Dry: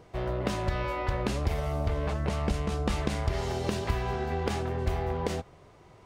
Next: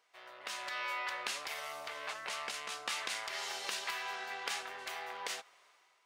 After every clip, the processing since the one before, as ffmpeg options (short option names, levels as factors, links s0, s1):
-af "dynaudnorm=f=210:g=5:m=3.55,highpass=1500,volume=0.398"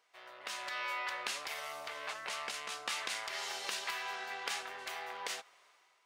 -af anull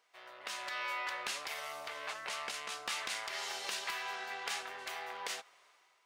-af "volume=26.6,asoftclip=hard,volume=0.0376"